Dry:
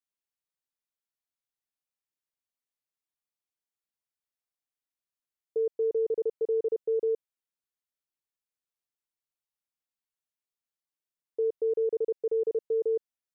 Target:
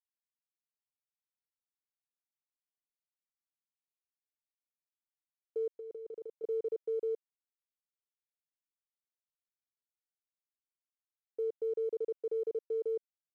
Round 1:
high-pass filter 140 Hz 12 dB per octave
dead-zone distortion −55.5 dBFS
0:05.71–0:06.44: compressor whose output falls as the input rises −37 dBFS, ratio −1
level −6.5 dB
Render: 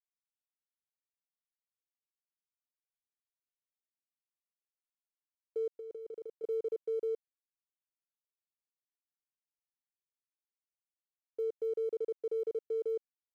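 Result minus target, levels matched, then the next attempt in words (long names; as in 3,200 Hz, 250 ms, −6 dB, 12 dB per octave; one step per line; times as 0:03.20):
dead-zone distortion: distortion +6 dB
high-pass filter 140 Hz 12 dB per octave
dead-zone distortion −61.5 dBFS
0:05.71–0:06.44: compressor whose output falls as the input rises −37 dBFS, ratio −1
level −6.5 dB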